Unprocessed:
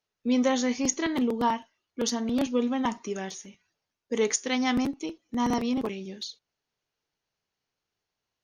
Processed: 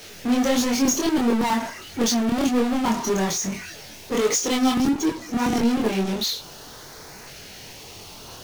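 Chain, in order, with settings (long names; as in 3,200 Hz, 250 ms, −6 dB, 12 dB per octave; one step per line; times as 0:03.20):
auto-filter notch saw up 0.55 Hz 970–3,500 Hz
power curve on the samples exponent 0.35
multi-voice chorus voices 2, 1.5 Hz, delay 24 ms, depth 3 ms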